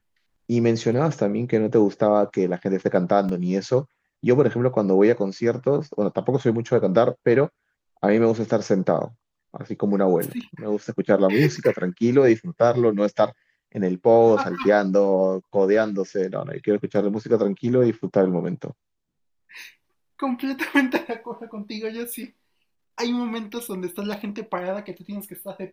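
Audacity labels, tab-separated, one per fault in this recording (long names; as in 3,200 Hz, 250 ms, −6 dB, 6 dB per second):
3.290000	3.290000	drop-out 3.1 ms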